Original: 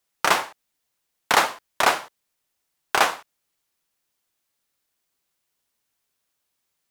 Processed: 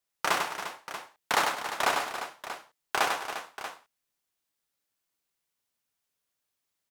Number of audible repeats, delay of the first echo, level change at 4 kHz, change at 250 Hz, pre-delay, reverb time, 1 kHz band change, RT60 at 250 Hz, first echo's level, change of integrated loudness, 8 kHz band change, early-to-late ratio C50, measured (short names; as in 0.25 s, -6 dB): 5, 97 ms, -6.0 dB, -6.0 dB, none, none, -6.0 dB, none, -5.0 dB, -8.0 dB, -6.0 dB, none